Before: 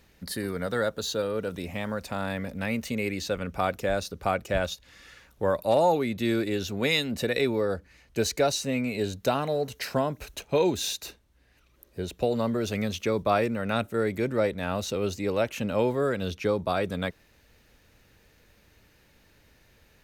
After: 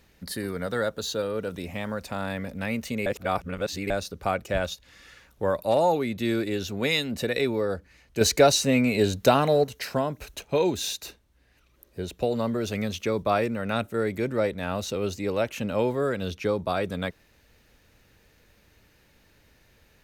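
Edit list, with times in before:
3.06–3.90 s: reverse
8.21–9.64 s: gain +6.5 dB

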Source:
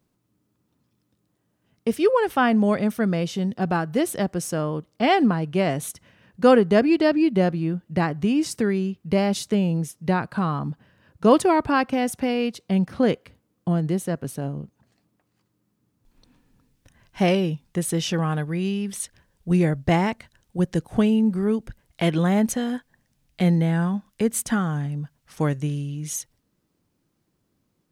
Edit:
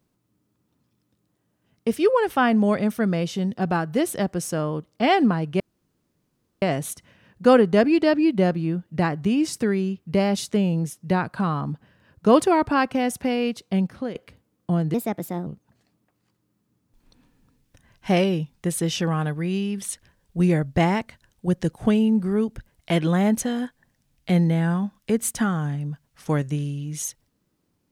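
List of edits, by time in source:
5.60 s: insert room tone 1.02 s
12.71–13.13 s: fade out, to -16.5 dB
13.92–14.58 s: speed 125%

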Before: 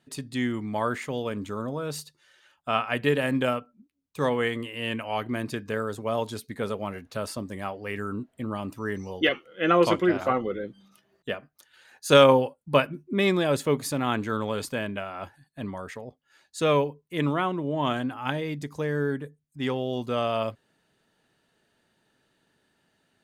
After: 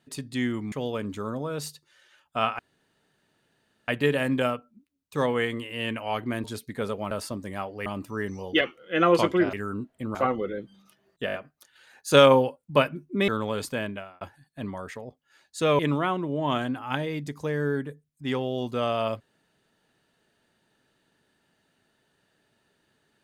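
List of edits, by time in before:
0.72–1.04 s: delete
2.91 s: insert room tone 1.29 s
5.47–6.25 s: delete
6.92–7.17 s: delete
7.92–8.54 s: move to 10.21 s
11.32 s: stutter 0.02 s, 5 plays
13.26–14.28 s: delete
14.85–15.21 s: fade out
16.79–17.14 s: delete

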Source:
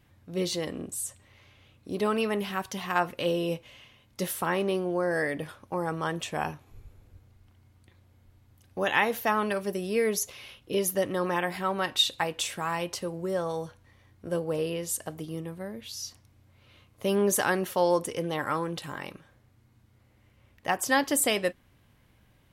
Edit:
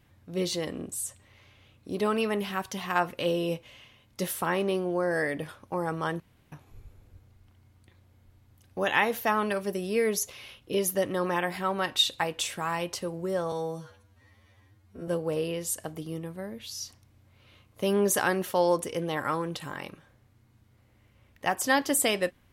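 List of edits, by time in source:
6.20–6.52 s: room tone
13.52–14.30 s: stretch 2×

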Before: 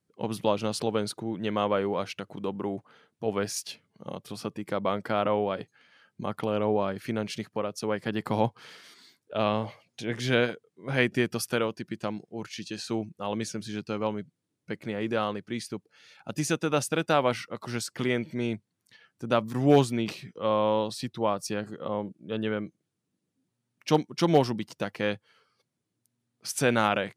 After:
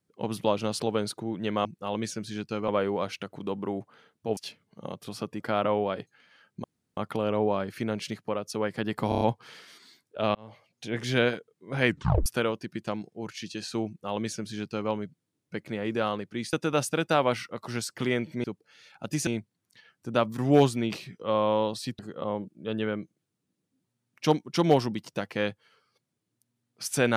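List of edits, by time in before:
3.34–3.60 s: delete
4.63–5.01 s: delete
6.25 s: insert room tone 0.33 s
8.37 s: stutter 0.03 s, 5 plays
9.51–10.08 s: fade in
11.03 s: tape stop 0.39 s
13.03–14.06 s: copy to 1.65 s
15.69–16.52 s: move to 18.43 s
21.15–21.63 s: delete

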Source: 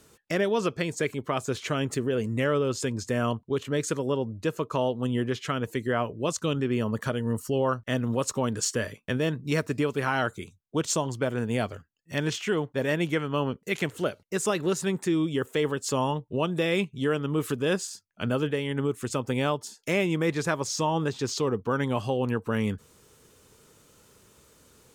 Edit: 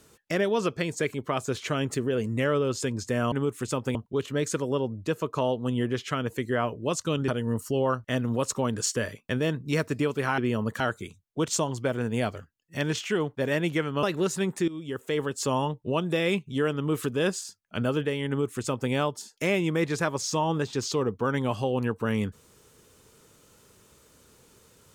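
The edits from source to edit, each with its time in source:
6.65–7.07 s: move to 10.17 s
13.40–14.49 s: delete
15.14–15.99 s: fade in equal-power, from -16.5 dB
18.74–19.37 s: copy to 3.32 s

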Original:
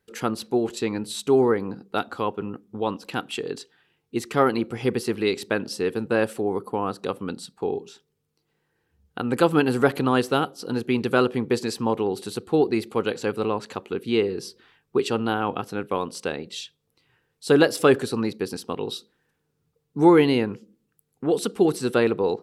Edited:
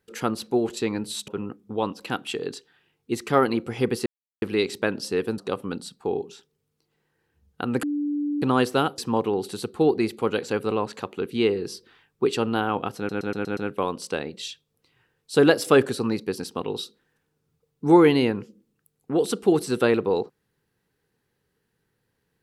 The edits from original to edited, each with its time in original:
1.28–2.32 s: delete
5.10 s: insert silence 0.36 s
6.06–6.95 s: delete
9.40–9.99 s: bleep 292 Hz -23 dBFS
10.55–11.71 s: delete
15.70 s: stutter 0.12 s, 6 plays

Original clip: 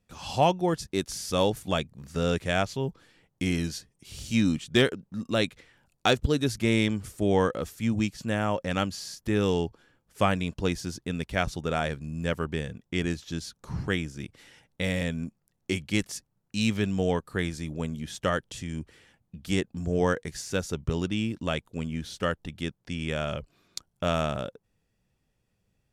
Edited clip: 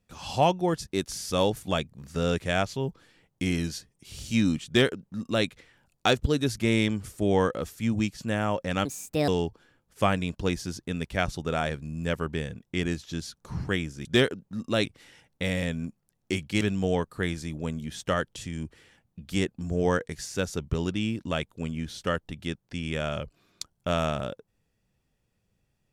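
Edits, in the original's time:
4.66–5.46 s: copy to 14.24 s
8.85–9.47 s: speed 144%
16.00–16.77 s: delete

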